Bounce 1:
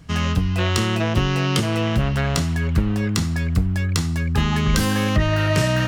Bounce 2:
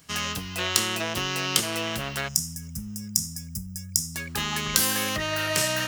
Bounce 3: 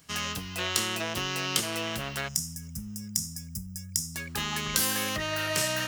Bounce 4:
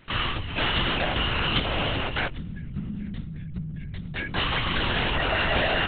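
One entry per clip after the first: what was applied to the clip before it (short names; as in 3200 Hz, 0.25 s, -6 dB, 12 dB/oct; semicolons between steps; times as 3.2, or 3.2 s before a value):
RIAA curve recording; spectral gain 2.28–4.15, 250–4900 Hz -23 dB; gain -5 dB
soft clip -8 dBFS, distortion -17 dB; gain -3 dB
LPC vocoder at 8 kHz whisper; gain +7 dB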